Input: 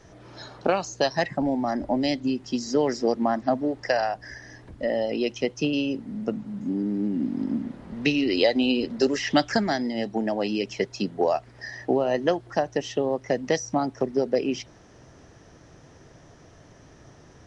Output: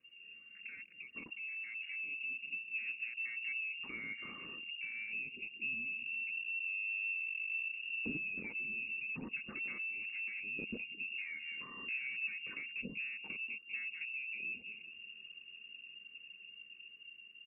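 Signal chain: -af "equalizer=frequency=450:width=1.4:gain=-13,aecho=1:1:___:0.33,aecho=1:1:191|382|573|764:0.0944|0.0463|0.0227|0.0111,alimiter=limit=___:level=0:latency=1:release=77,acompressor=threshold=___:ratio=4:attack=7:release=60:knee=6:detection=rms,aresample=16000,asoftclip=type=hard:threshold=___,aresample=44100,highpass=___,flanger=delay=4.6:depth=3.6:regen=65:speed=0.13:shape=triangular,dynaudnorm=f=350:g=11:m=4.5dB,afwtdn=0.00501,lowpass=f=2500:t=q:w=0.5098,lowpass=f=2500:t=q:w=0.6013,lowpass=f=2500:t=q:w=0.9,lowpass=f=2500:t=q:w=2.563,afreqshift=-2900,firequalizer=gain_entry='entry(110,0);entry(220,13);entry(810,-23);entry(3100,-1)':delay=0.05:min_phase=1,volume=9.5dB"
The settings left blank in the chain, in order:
2.9, -16dB, -42dB, -39.5dB, 76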